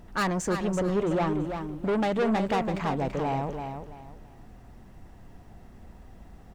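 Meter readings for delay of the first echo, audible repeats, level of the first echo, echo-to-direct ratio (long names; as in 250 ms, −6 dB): 334 ms, 3, −7.0 dB, −6.5 dB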